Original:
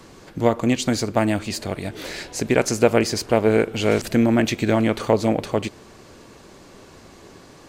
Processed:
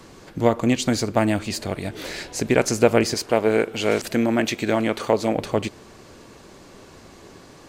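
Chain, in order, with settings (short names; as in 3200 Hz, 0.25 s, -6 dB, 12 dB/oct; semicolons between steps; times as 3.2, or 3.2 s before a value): 3.14–5.36 low shelf 170 Hz -11 dB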